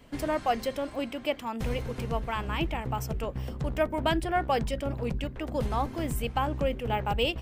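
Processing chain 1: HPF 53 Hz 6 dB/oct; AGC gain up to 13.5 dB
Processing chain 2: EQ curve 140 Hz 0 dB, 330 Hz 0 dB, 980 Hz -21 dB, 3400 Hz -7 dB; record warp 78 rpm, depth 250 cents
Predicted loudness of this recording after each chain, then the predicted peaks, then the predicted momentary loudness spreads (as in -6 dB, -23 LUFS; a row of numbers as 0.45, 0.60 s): -19.5, -35.0 LUFS; -2.5, -18.5 dBFS; 6, 4 LU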